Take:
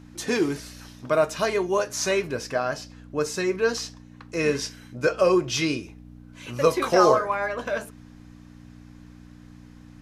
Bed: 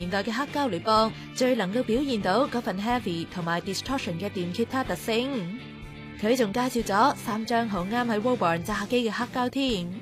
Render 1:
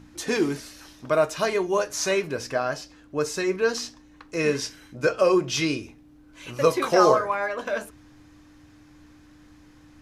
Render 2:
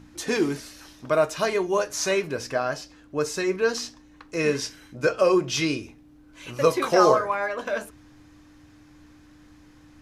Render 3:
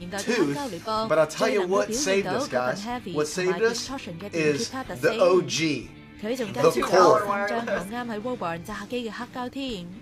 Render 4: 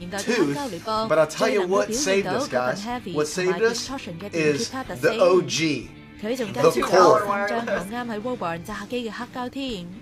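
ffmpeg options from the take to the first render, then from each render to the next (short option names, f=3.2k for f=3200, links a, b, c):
-af "bandreject=f=60:t=h:w=4,bandreject=f=120:t=h:w=4,bandreject=f=180:t=h:w=4,bandreject=f=240:t=h:w=4"
-af anull
-filter_complex "[1:a]volume=-5.5dB[a];[0:a][a]amix=inputs=2:normalize=0"
-af "volume=2dB"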